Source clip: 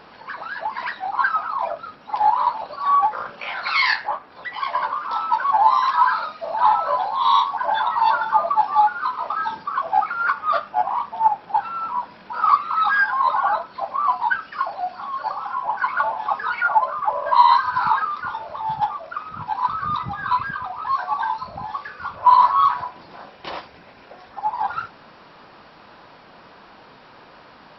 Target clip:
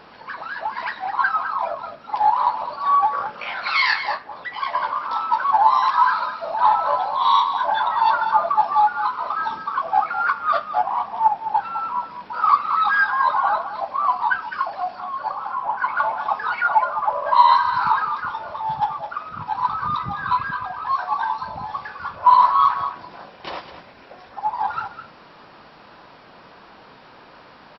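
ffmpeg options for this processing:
ffmpeg -i in.wav -filter_complex "[0:a]asettb=1/sr,asplit=3[link_01][link_02][link_03];[link_01]atrim=end=15.004[link_04];[link_02]atrim=start=15:end=15.96,asetpts=PTS-STARTPTS,afade=type=in:duration=0.004:curve=qsin,afade=type=out:start_time=0.956:duration=0.004:curve=qsin,highshelf=frequency=4400:gain=-9.5[link_05];[link_03]atrim=start=15.956[link_06];[link_04][link_05]acrossfade=duration=0.004:curve1=hsin:curve2=qsin[link_07];[link_07][link_06]acrossfade=duration=0.004:curve1=qsin:curve2=hsin,aecho=1:1:208:0.282" out.wav

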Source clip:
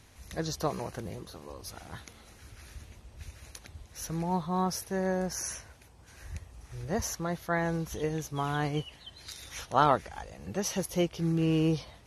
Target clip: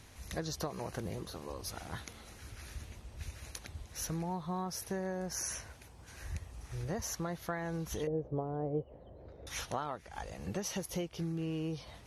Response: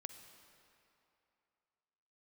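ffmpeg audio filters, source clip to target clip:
-filter_complex "[0:a]acompressor=threshold=-35dB:ratio=16,asettb=1/sr,asplit=3[link_01][link_02][link_03];[link_01]atrim=end=8.074[link_04];[link_02]atrim=start=8.07:end=9.47,asetpts=PTS-STARTPTS,afade=type=in:duration=0.004:curve=qsin,afade=type=out:start_time=1.396:duration=0.004:curve=qsin,lowpass=frequency=540:width_type=q:width=3.4[link_05];[link_03]atrim=start=9.466[link_06];[link_04][link_05]acrossfade=duration=0.004:curve1=hsin:curve2=qsin[link_07];[link_07][link_06]acrossfade=duration=0.004:curve1=qsin:curve2=hsin,volume=1.5dB"

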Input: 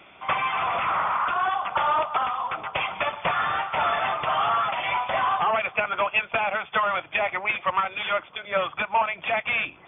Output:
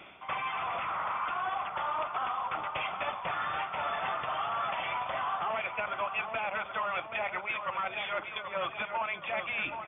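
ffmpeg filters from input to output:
ffmpeg -i in.wav -filter_complex "[0:a]areverse,acompressor=threshold=-32dB:ratio=6,areverse,asplit=2[link_01][link_02];[link_02]adelay=779,lowpass=frequency=3100:poles=1,volume=-7dB,asplit=2[link_03][link_04];[link_04]adelay=779,lowpass=frequency=3100:poles=1,volume=0.55,asplit=2[link_05][link_06];[link_06]adelay=779,lowpass=frequency=3100:poles=1,volume=0.55,asplit=2[link_07][link_08];[link_08]adelay=779,lowpass=frequency=3100:poles=1,volume=0.55,asplit=2[link_09][link_10];[link_10]adelay=779,lowpass=frequency=3100:poles=1,volume=0.55,asplit=2[link_11][link_12];[link_12]adelay=779,lowpass=frequency=3100:poles=1,volume=0.55,asplit=2[link_13][link_14];[link_14]adelay=779,lowpass=frequency=3100:poles=1,volume=0.55[link_15];[link_01][link_03][link_05][link_07][link_09][link_11][link_13][link_15]amix=inputs=8:normalize=0" out.wav

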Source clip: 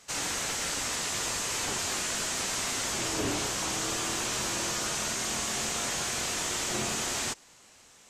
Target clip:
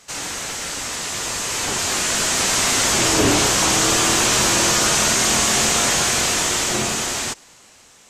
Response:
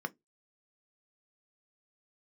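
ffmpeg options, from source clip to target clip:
-filter_complex "[0:a]asplit=2[link_01][link_02];[link_02]alimiter=level_in=9dB:limit=-24dB:level=0:latency=1,volume=-9dB,volume=-3dB[link_03];[link_01][link_03]amix=inputs=2:normalize=0,dynaudnorm=framelen=310:gausssize=13:maxgain=10.5dB,volume=2dB"

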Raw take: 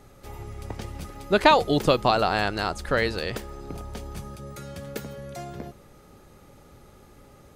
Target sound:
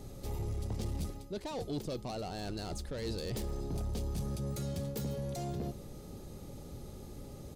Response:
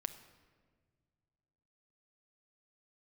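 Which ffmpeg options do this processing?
-af "areverse,acompressor=threshold=-33dB:ratio=10,areverse,asoftclip=type=tanh:threshold=-36dB,firequalizer=gain_entry='entry(160,0);entry(1400,-15);entry(4000,-3)':delay=0.05:min_phase=1,volume=6.5dB"

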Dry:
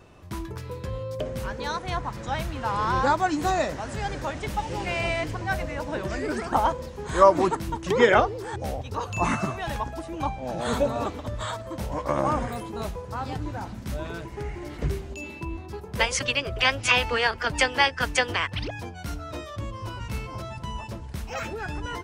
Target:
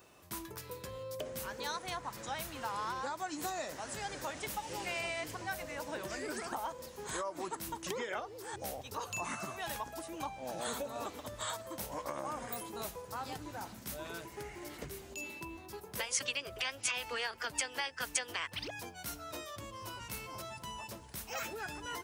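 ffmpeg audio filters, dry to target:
ffmpeg -i in.wav -af "alimiter=limit=-15.5dB:level=0:latency=1:release=471,acompressor=threshold=-27dB:ratio=6,aemphasis=mode=production:type=bsi,volume=-7dB" out.wav

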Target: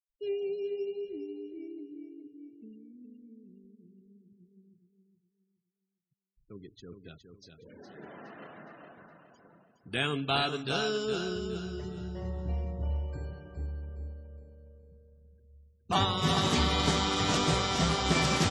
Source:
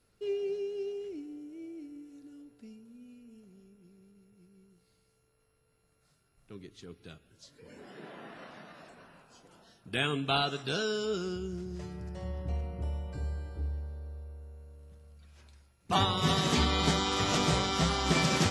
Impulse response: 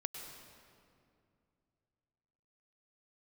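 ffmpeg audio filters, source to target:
-af "afftfilt=real='re*gte(hypot(re,im),0.00355)':imag='im*gte(hypot(re,im),0.00355)':win_size=1024:overlap=0.75,aecho=1:1:415|830|1245|1660:0.447|0.152|0.0516|0.0176"

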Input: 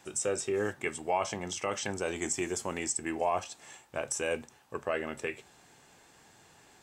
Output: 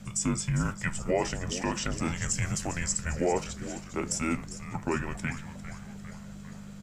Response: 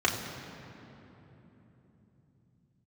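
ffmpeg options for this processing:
-filter_complex "[0:a]aeval=exprs='val(0)+0.00501*(sin(2*PI*50*n/s)+sin(2*PI*2*50*n/s)/2+sin(2*PI*3*50*n/s)/3+sin(2*PI*4*50*n/s)/4+sin(2*PI*5*50*n/s)/5)':channel_layout=same,asplit=8[link_01][link_02][link_03][link_04][link_05][link_06][link_07][link_08];[link_02]adelay=401,afreqshift=-140,volume=-12.5dB[link_09];[link_03]adelay=802,afreqshift=-280,volume=-16.5dB[link_10];[link_04]adelay=1203,afreqshift=-420,volume=-20.5dB[link_11];[link_05]adelay=1604,afreqshift=-560,volume=-24.5dB[link_12];[link_06]adelay=2005,afreqshift=-700,volume=-28.6dB[link_13];[link_07]adelay=2406,afreqshift=-840,volume=-32.6dB[link_14];[link_08]adelay=2807,afreqshift=-980,volume=-36.6dB[link_15];[link_01][link_09][link_10][link_11][link_12][link_13][link_14][link_15]amix=inputs=8:normalize=0,afreqshift=-250,volume=2.5dB"

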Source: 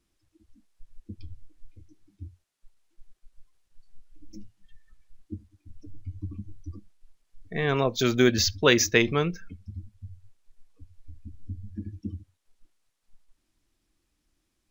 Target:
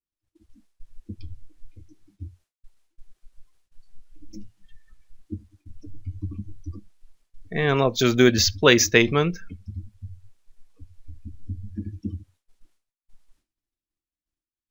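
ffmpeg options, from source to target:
ffmpeg -i in.wav -af "agate=range=-33dB:threshold=-58dB:ratio=3:detection=peak,volume=4dB" out.wav

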